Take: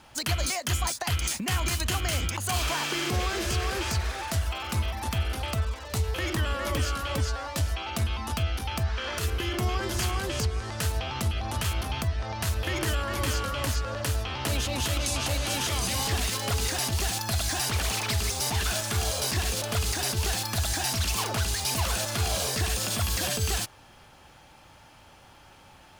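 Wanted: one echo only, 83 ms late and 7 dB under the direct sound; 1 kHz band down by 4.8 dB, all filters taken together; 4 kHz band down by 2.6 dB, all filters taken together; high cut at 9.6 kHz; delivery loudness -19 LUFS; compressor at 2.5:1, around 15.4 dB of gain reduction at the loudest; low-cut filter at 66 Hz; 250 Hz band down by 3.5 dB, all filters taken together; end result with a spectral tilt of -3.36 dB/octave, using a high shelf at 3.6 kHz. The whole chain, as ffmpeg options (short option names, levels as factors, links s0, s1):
-af "highpass=66,lowpass=9600,equalizer=f=250:t=o:g=-4.5,equalizer=f=1000:t=o:g=-6.5,highshelf=f=3600:g=7.5,equalizer=f=4000:t=o:g=-8.5,acompressor=threshold=0.00355:ratio=2.5,aecho=1:1:83:0.447,volume=15"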